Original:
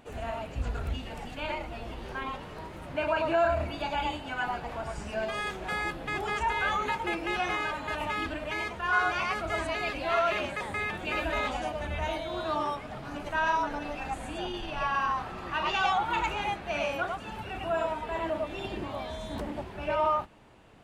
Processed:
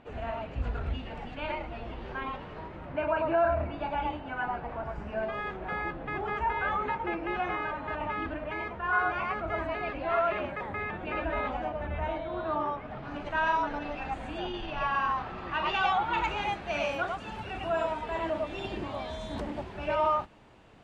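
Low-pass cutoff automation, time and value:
2.52 s 3 kHz
3.08 s 1.8 kHz
12.75 s 1.8 kHz
13.22 s 3.8 kHz
16.05 s 3.8 kHz
16.57 s 7.6 kHz

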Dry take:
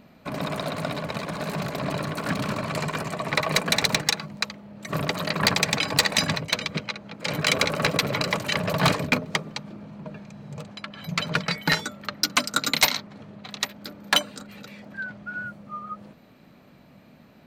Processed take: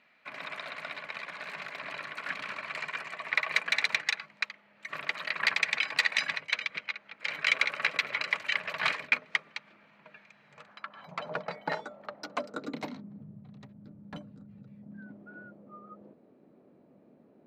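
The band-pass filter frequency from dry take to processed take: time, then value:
band-pass filter, Q 2
10.46 s 2.1 kHz
11.31 s 680 Hz
12.25 s 680 Hz
13.38 s 130 Hz
14.76 s 130 Hz
15.26 s 390 Hz

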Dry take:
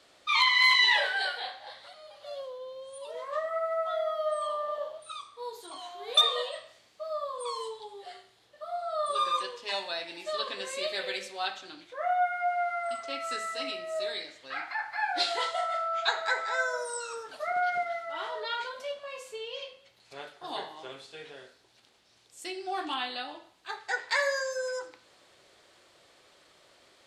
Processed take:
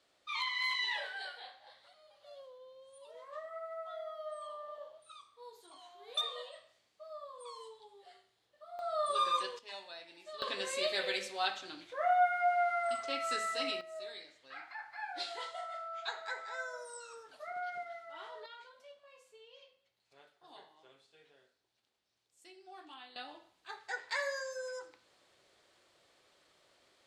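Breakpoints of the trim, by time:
-13 dB
from 8.79 s -3 dB
from 9.59 s -14 dB
from 10.42 s -1 dB
from 13.81 s -12 dB
from 18.46 s -19 dB
from 23.16 s -8.5 dB

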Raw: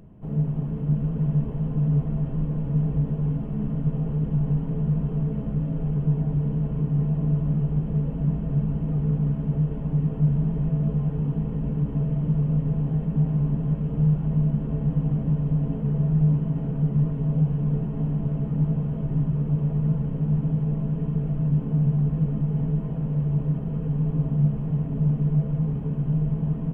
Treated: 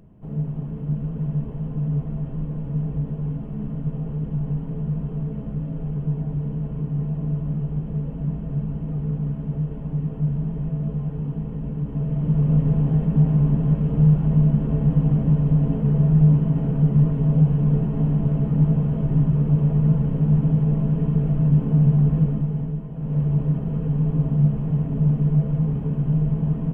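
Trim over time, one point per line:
11.84 s -2 dB
12.54 s +5 dB
22.18 s +5 dB
22.91 s -5.5 dB
23.16 s +3 dB

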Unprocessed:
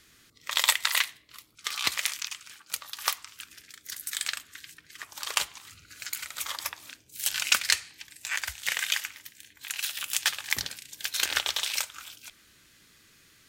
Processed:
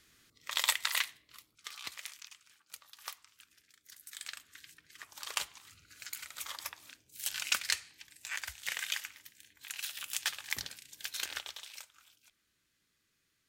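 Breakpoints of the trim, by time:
1.38 s -6.5 dB
1.84 s -16 dB
4.04 s -16 dB
4.58 s -8 dB
11.10 s -8 dB
11.67 s -19 dB

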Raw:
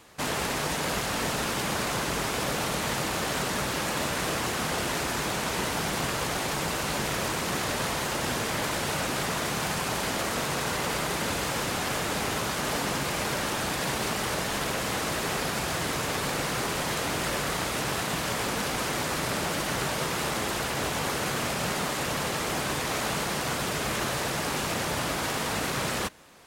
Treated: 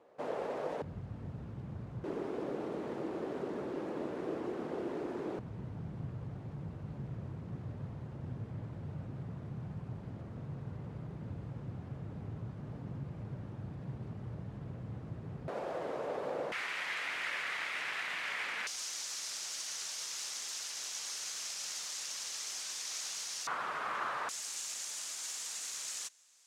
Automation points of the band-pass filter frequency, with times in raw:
band-pass filter, Q 2.5
520 Hz
from 0.82 s 100 Hz
from 2.04 s 360 Hz
from 5.39 s 110 Hz
from 15.48 s 540 Hz
from 16.52 s 2.1 kHz
from 18.67 s 6 kHz
from 23.47 s 1.2 kHz
from 24.29 s 6.8 kHz

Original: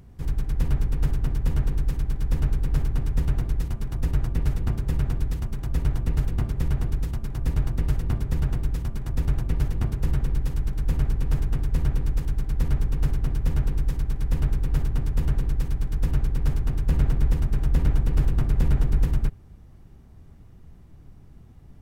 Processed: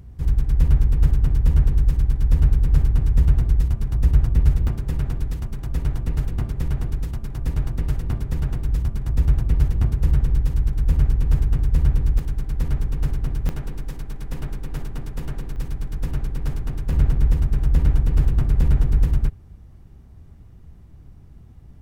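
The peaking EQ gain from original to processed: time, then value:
peaking EQ 63 Hz 2 oct
+9.5 dB
from 4.67 s +1 dB
from 8.68 s +7.5 dB
from 12.19 s +1 dB
from 13.49 s -10 dB
from 15.56 s -3 dB
from 16.93 s +5 dB

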